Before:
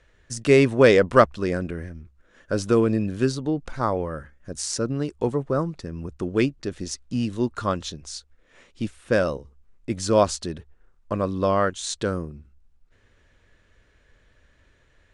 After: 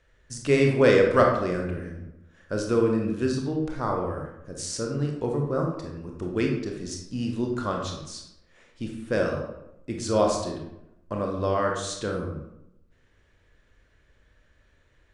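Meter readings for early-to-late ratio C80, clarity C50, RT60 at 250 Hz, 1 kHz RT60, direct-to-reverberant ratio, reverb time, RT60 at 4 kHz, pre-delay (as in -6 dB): 7.0 dB, 4.0 dB, 0.90 s, 0.85 s, 0.5 dB, 0.85 s, 0.55 s, 24 ms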